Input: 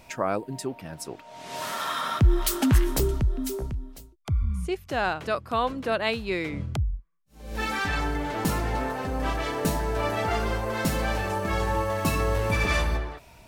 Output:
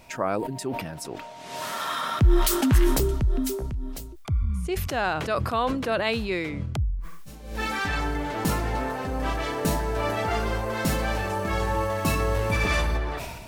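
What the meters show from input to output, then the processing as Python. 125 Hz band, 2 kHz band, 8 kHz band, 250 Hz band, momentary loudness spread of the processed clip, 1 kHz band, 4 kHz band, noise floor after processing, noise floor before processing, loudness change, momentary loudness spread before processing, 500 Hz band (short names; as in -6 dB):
+0.5 dB, +0.5 dB, +1.5 dB, +1.5 dB, 12 LU, +0.5 dB, +1.0 dB, -40 dBFS, -52 dBFS, +1.0 dB, 12 LU, +1.0 dB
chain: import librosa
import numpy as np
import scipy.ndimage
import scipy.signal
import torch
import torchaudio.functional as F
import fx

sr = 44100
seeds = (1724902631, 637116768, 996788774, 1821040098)

y = fx.sustainer(x, sr, db_per_s=37.0)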